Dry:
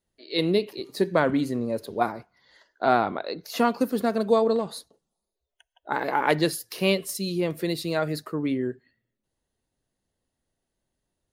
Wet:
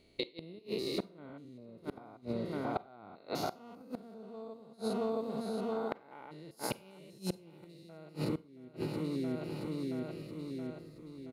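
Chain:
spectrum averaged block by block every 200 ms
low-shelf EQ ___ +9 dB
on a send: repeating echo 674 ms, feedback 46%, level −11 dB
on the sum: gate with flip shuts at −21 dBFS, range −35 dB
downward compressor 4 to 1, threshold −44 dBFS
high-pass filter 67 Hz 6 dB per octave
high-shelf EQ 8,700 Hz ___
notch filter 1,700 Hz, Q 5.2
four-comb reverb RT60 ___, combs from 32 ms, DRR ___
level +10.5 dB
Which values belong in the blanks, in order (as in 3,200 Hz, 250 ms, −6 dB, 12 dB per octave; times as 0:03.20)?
120 Hz, −7 dB, 0.3 s, 18.5 dB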